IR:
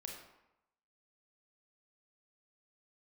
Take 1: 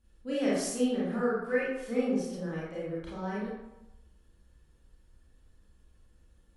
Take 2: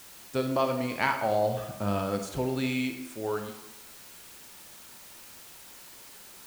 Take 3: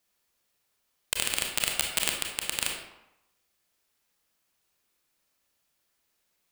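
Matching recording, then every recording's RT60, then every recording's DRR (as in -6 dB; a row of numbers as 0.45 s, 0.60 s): 3; 0.90 s, 0.90 s, 0.90 s; -9.0 dB, 5.0 dB, 0.0 dB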